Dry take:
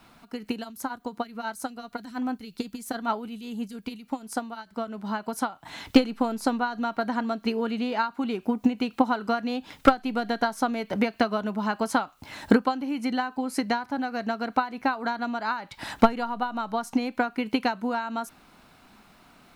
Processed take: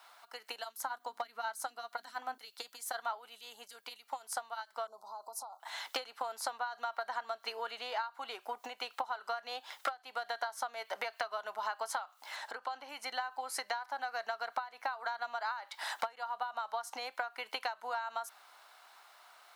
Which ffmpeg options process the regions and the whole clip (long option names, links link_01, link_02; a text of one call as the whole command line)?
ffmpeg -i in.wav -filter_complex "[0:a]asettb=1/sr,asplit=3[link_01][link_02][link_03];[link_01]atrim=end=0.764[link_04];[link_02]atrim=start=0.76:end=2.38,asetpts=PTS-STARTPTS,afade=type=in:duration=0.004:curve=qsin,afade=type=out:start_time=1.616:duration=0.004:curve=qsin,volume=20dB,asoftclip=hard,volume=-20dB,bass=frequency=250:gain=13,treble=frequency=4000:gain=-1,bandreject=frequency=50:width_type=h:width=6,bandreject=frequency=100:width_type=h:width=6,bandreject=frequency=150:width_type=h:width=6,bandreject=frequency=200:width_type=h:width=6,bandreject=frequency=250:width_type=h:width=6,bandreject=frequency=300:width_type=h:width=6[link_05];[link_03]atrim=start=2.376[link_06];[link_04][link_05]acrossfade=duration=0.004:curve1=hsin:curve2=qsin[link_07];[link_07][link_06]acrossfade=duration=0.004:curve1=qsin:curve2=hsin,asettb=1/sr,asplit=3[link_08][link_09][link_10];[link_08]atrim=end=4.874[link_11];[link_09]atrim=start=4.87:end=5.6,asetpts=PTS-STARTPTS,afade=type=in:duration=0.004:curve=qsin,afade=type=out:start_time=0.726:duration=0.004:curve=qsin,acompressor=threshold=-34dB:ratio=16:attack=3.2:release=140:knee=1:detection=peak,asuperstop=centerf=2200:order=8:qfactor=0.68[link_12];[link_10]atrim=start=5.596[link_13];[link_11][link_12]acrossfade=duration=0.004:curve1=hsin:curve2=qsin[link_14];[link_14][link_13]acrossfade=duration=0.004:curve1=qsin:curve2=hsin,asettb=1/sr,asplit=3[link_15][link_16][link_17];[link_15]atrim=end=12.364[link_18];[link_16]atrim=start=12.36:end=12.89,asetpts=PTS-STARTPTS,afade=type=in:duration=0.004:curve=qsin,afade=type=out:start_time=0.526:duration=0.004:curve=qsin,highshelf=frequency=10000:gain=-12,acompressor=threshold=-27dB:ratio=4:attack=3.2:release=140:knee=1:detection=peak[link_19];[link_17]atrim=start=12.886[link_20];[link_18][link_19]acrossfade=duration=0.004:curve1=hsin:curve2=qsin[link_21];[link_21][link_20]acrossfade=duration=0.004:curve1=qsin:curve2=hsin,highpass=frequency=670:width=0.5412,highpass=frequency=670:width=1.3066,equalizer=frequency=2500:width_type=o:width=0.28:gain=-6,acompressor=threshold=-32dB:ratio=8,volume=-1dB" out.wav